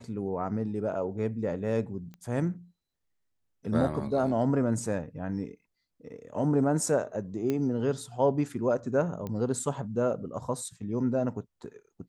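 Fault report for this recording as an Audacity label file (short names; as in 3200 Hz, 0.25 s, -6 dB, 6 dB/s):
2.140000	2.140000	pop -32 dBFS
7.500000	7.500000	pop -17 dBFS
9.270000	9.270000	pop -23 dBFS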